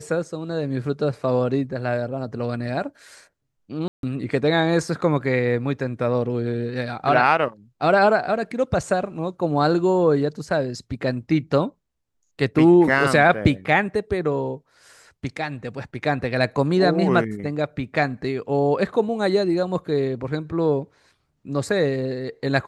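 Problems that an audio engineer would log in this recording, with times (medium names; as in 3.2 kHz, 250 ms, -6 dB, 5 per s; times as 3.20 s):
3.88–4.03 s: dropout 152 ms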